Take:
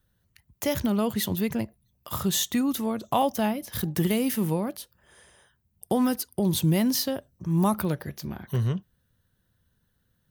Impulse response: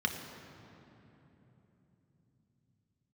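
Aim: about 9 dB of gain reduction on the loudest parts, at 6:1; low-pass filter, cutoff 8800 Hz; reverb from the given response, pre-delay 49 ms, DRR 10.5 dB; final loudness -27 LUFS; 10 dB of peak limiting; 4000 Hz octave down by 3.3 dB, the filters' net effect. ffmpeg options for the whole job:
-filter_complex "[0:a]lowpass=8.8k,equalizer=f=4k:t=o:g=-4,acompressor=threshold=-29dB:ratio=6,alimiter=level_in=2.5dB:limit=-24dB:level=0:latency=1,volume=-2.5dB,asplit=2[a][b];[1:a]atrim=start_sample=2205,adelay=49[c];[b][c]afir=irnorm=-1:irlink=0,volume=-17.5dB[d];[a][d]amix=inputs=2:normalize=0,volume=8.5dB"

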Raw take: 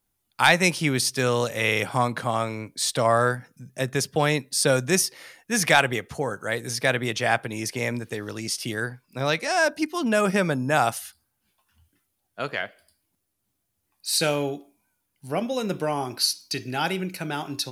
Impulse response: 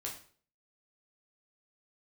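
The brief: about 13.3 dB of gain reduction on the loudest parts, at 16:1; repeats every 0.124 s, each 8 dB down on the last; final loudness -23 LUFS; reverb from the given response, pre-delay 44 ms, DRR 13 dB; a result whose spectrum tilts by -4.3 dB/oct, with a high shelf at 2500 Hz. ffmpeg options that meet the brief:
-filter_complex "[0:a]highshelf=f=2.5k:g=-8,acompressor=threshold=-28dB:ratio=16,aecho=1:1:124|248|372|496|620:0.398|0.159|0.0637|0.0255|0.0102,asplit=2[a][b];[1:a]atrim=start_sample=2205,adelay=44[c];[b][c]afir=irnorm=-1:irlink=0,volume=-12.5dB[d];[a][d]amix=inputs=2:normalize=0,volume=10dB"

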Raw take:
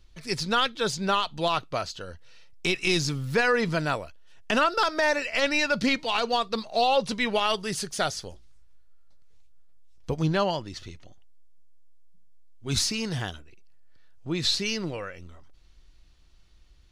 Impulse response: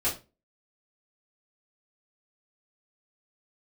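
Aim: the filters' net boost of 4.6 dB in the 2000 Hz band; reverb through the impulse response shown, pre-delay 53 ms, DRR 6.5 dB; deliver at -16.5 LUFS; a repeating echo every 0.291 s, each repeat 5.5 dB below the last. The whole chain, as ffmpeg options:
-filter_complex "[0:a]equalizer=f=2k:t=o:g=6,aecho=1:1:291|582|873|1164|1455|1746|2037:0.531|0.281|0.149|0.079|0.0419|0.0222|0.0118,asplit=2[a][b];[1:a]atrim=start_sample=2205,adelay=53[c];[b][c]afir=irnorm=-1:irlink=0,volume=-15dB[d];[a][d]amix=inputs=2:normalize=0,volume=6dB"

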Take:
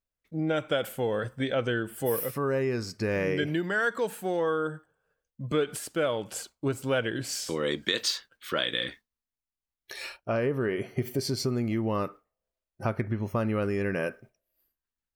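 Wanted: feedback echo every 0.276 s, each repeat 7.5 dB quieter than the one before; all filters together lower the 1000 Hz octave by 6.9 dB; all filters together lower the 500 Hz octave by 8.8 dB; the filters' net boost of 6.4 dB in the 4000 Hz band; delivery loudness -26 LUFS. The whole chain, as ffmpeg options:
-af "equalizer=f=500:t=o:g=-9,equalizer=f=1k:t=o:g=-8.5,equalizer=f=4k:t=o:g=8.5,aecho=1:1:276|552|828|1104|1380:0.422|0.177|0.0744|0.0312|0.0131,volume=4dB"

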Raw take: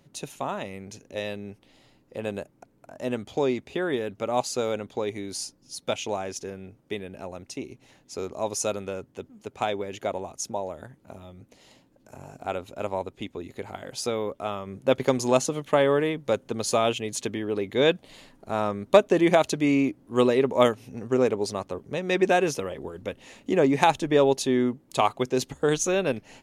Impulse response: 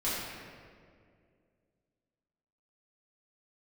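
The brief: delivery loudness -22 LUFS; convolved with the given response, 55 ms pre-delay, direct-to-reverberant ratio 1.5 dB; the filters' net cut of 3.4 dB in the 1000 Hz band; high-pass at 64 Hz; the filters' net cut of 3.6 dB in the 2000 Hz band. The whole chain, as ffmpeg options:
-filter_complex "[0:a]highpass=64,equalizer=f=1k:t=o:g=-4,equalizer=f=2k:t=o:g=-3.5,asplit=2[a][b];[1:a]atrim=start_sample=2205,adelay=55[c];[b][c]afir=irnorm=-1:irlink=0,volume=-9.5dB[d];[a][d]amix=inputs=2:normalize=0,volume=2.5dB"

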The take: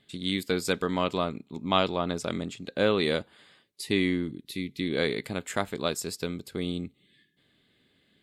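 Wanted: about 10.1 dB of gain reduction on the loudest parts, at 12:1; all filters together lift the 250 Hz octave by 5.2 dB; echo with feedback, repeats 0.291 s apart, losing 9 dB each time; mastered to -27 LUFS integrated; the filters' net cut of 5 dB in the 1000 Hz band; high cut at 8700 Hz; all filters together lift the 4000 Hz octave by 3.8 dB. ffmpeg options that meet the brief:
-af "lowpass=8.7k,equalizer=f=250:t=o:g=7,equalizer=f=1k:t=o:g=-7.5,equalizer=f=4k:t=o:g=5,acompressor=threshold=-27dB:ratio=12,aecho=1:1:291|582|873|1164:0.355|0.124|0.0435|0.0152,volume=6dB"

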